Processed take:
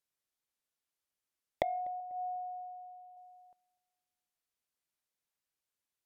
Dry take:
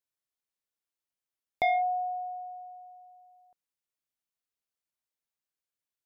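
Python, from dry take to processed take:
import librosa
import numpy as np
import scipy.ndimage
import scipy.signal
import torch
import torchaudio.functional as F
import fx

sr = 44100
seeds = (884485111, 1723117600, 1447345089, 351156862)

p1 = fx.env_lowpass_down(x, sr, base_hz=380.0, full_db=-30.0)
p2 = fx.fixed_phaser(p1, sr, hz=1600.0, stages=6, at=(2.0, 3.17))
p3 = p2 + fx.echo_filtered(p2, sr, ms=246, feedback_pct=46, hz=960.0, wet_db=-22, dry=0)
y = p3 * librosa.db_to_amplitude(1.5)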